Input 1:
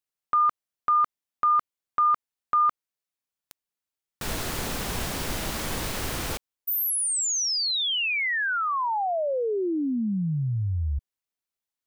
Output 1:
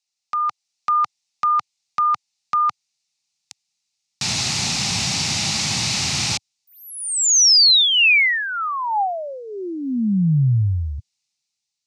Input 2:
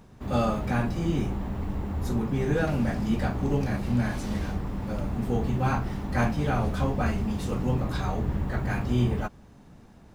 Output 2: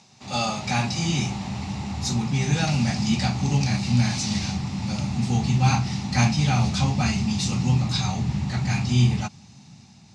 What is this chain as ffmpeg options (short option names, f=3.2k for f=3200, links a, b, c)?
-filter_complex "[0:a]acrossover=split=2700[a][b];[b]acompressor=threshold=-35dB:ratio=4:attack=1:release=60[c];[a][c]amix=inputs=2:normalize=0,asubboost=boost=5:cutoff=210,dynaudnorm=f=170:g=7:m=5dB,aexciter=amount=12.2:drive=2.5:freq=2.3k,highpass=f=110:w=0.5412,highpass=f=110:w=1.3066,equalizer=f=300:t=q:w=4:g=-5,equalizer=f=470:t=q:w=4:g=-7,equalizer=f=810:t=q:w=4:g=10,equalizer=f=1.3k:t=q:w=4:g=4,equalizer=f=3.2k:t=q:w=4:g=-8,lowpass=f=6.4k:w=0.5412,lowpass=f=6.4k:w=1.3066,volume=-4.5dB"